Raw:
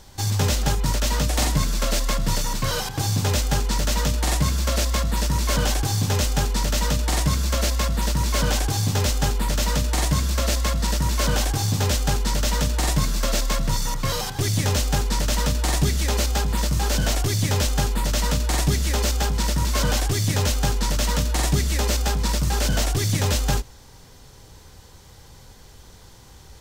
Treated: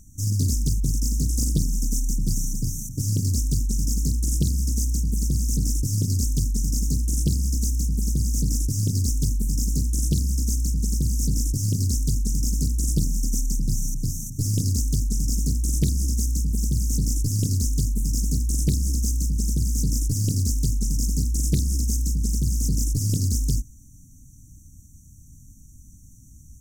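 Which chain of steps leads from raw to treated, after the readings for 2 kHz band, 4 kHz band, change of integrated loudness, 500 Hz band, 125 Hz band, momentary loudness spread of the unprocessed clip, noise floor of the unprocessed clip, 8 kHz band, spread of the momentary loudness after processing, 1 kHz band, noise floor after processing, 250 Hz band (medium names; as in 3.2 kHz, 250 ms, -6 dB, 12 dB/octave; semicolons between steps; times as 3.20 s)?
under -30 dB, -11.0 dB, -2.0 dB, -15.5 dB, 0.0 dB, 2 LU, -47 dBFS, -1.5 dB, 3 LU, under -40 dB, -48 dBFS, -0.5 dB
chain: brick-wall FIR band-stop 310–5600 Hz; loudspeaker Doppler distortion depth 0.89 ms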